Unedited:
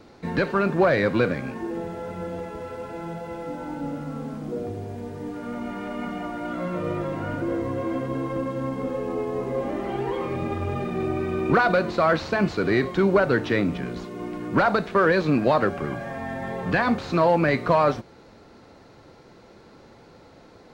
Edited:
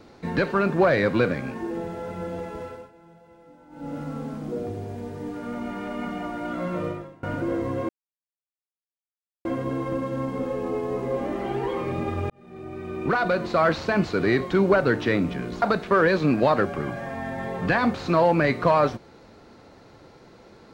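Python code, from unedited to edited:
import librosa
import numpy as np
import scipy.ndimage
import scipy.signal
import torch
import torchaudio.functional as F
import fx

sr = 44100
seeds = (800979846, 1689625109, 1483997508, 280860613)

y = fx.edit(x, sr, fx.fade_down_up(start_s=2.62, length_s=1.37, db=-18.0, fade_s=0.29),
    fx.fade_out_to(start_s=6.84, length_s=0.39, curve='qua', floor_db=-23.5),
    fx.insert_silence(at_s=7.89, length_s=1.56),
    fx.fade_in_span(start_s=10.74, length_s=1.34),
    fx.cut(start_s=14.06, length_s=0.6), tone=tone)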